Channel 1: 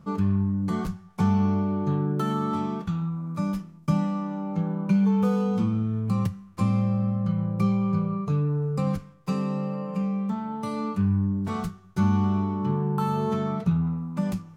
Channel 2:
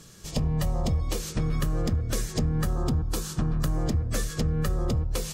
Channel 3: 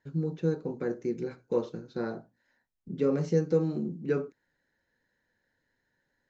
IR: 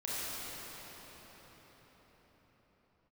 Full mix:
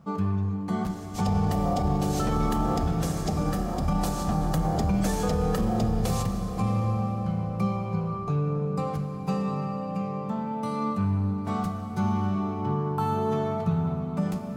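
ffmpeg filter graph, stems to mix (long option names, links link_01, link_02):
-filter_complex "[0:a]volume=-4dB,asplit=2[link_01][link_02];[link_02]volume=-8dB[link_03];[1:a]equalizer=frequency=750:width=7.2:gain=6.5,flanger=delay=1.5:depth=4.8:regen=67:speed=0.68:shape=triangular,adelay=900,volume=2dB,asplit=2[link_04][link_05];[link_05]volume=-10dB[link_06];[2:a]alimiter=limit=-23.5dB:level=0:latency=1,aemphasis=mode=production:type=riaa,aecho=1:1:0.9:0.72,volume=-17dB,asplit=2[link_07][link_08];[link_08]apad=whole_len=274972[link_09];[link_04][link_09]sidechaincompress=threshold=-54dB:ratio=8:attack=5.5:release=110[link_10];[3:a]atrim=start_sample=2205[link_11];[link_03][link_06]amix=inputs=2:normalize=0[link_12];[link_12][link_11]afir=irnorm=-1:irlink=0[link_13];[link_01][link_10][link_07][link_13]amix=inputs=4:normalize=0,highpass=frequency=40:poles=1,equalizer=frequency=730:width_type=o:width=0.43:gain=9,alimiter=limit=-16.5dB:level=0:latency=1:release=29"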